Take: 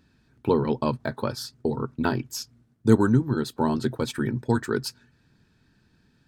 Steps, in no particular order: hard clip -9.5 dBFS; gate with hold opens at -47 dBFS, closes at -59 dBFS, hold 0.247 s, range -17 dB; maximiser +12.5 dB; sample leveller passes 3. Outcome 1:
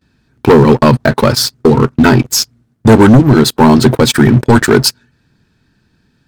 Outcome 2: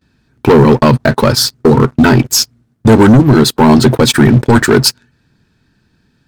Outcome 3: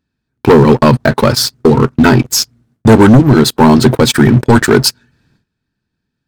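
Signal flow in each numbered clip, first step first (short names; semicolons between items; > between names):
sample leveller > hard clip > maximiser > gate with hold; hard clip > sample leveller > maximiser > gate with hold; gate with hold > sample leveller > hard clip > maximiser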